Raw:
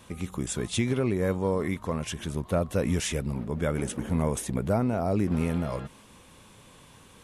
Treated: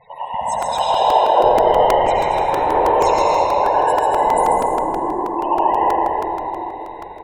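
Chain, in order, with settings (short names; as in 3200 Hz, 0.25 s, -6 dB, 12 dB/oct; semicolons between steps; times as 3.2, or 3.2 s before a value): band inversion scrambler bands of 1000 Hz; whisperiser; loudest bins only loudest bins 32; 2.23–2.75 tube stage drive 19 dB, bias 0.4; 4.46–5.39 double band-pass 610 Hz, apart 1.7 oct; bouncing-ball echo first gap 0.14 s, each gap 0.65×, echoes 5; reverb RT60 3.9 s, pre-delay 66 ms, DRR -6.5 dB; crackling interface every 0.16 s, samples 128, repeat, from 0.62; gain +4 dB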